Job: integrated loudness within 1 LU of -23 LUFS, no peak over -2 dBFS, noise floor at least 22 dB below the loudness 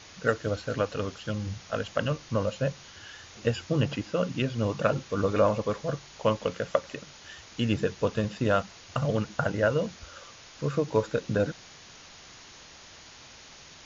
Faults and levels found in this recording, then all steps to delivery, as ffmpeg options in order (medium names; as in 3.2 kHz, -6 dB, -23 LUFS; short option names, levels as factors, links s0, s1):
noise floor -50 dBFS; noise floor target -51 dBFS; loudness -29.0 LUFS; peak level -9.0 dBFS; loudness target -23.0 LUFS
-> -af "afftdn=nr=6:nf=-50"
-af "volume=2"